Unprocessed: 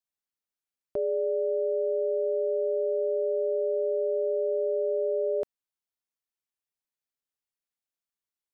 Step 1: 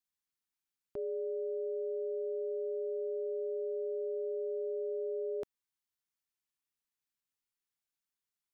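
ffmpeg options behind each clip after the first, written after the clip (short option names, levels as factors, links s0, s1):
-af "equalizer=f=570:t=o:w=0.6:g=-12,alimiter=level_in=2.24:limit=0.0631:level=0:latency=1:release=66,volume=0.447"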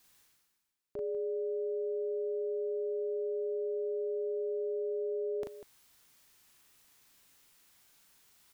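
-af "areverse,acompressor=mode=upward:threshold=0.00501:ratio=2.5,areverse,aecho=1:1:37.9|195.3:0.708|0.251"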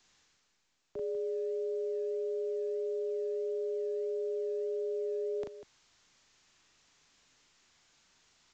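-filter_complex "[0:a]acrossover=split=170|300[s0][s1][s2];[s0]acrusher=samples=16:mix=1:aa=0.000001:lfo=1:lforange=9.6:lforate=1.6[s3];[s3][s1][s2]amix=inputs=3:normalize=0" -ar 16000 -c:a pcm_mulaw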